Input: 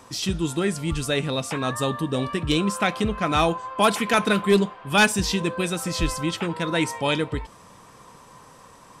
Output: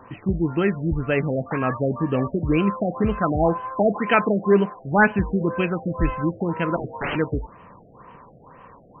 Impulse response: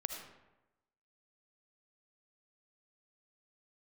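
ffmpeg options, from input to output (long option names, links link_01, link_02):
-filter_complex "[0:a]asettb=1/sr,asplit=3[link_01][link_02][link_03];[link_01]atrim=end=3.964[link_04];[link_02]atrim=start=3.96:end=4.76,asetpts=PTS-STARTPTS,afade=type=in:duration=0.004:curve=qsin,afade=type=out:start_time=0.796:duration=0.004:curve=qsin,highpass=frequency=170:poles=1[link_05];[link_03]atrim=start=4.756[link_06];[link_04][link_05]acrossfade=duration=0.004:curve1=hsin:curve2=qsin[link_07];[link_07][link_06]acrossfade=duration=0.004:curve1=qsin:curve2=hsin,asettb=1/sr,asplit=3[link_08][link_09][link_10];[link_08]atrim=end=6.764[link_11];[link_09]atrim=start=6.76:end=7.16,asetpts=PTS-STARTPTS,afade=type=in:duration=0.004:curve=qsin,afade=type=out:start_time=0.396:duration=0.004:curve=qsin,aeval=exprs='(mod(10.6*val(0)+1,2)-1)/10.6':channel_layout=same[link_12];[link_10]atrim=start=7.156[link_13];[link_11][link_12]acrossfade=duration=0.004:curve1=hsin:curve2=qsin[link_14];[link_14][link_13]acrossfade=duration=0.004:curve1=qsin:curve2=hsin,afftfilt=real='re*lt(b*sr/1024,730*pow(3200/730,0.5+0.5*sin(2*PI*2*pts/sr)))':imag='im*lt(b*sr/1024,730*pow(3200/730,0.5+0.5*sin(2*PI*2*pts/sr)))':win_size=1024:overlap=0.75,volume=3dB"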